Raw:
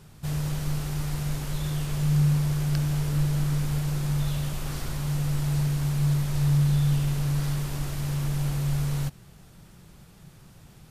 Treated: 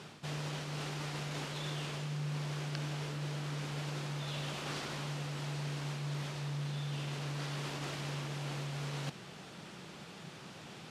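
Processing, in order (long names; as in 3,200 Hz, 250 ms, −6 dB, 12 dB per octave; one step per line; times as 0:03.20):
reversed playback
downward compressor 4 to 1, threshold −37 dBFS, peak gain reduction 15.5 dB
reversed playback
band-pass filter 250–5,700 Hz
parametric band 2,900 Hz +3 dB 0.86 octaves
level +7.5 dB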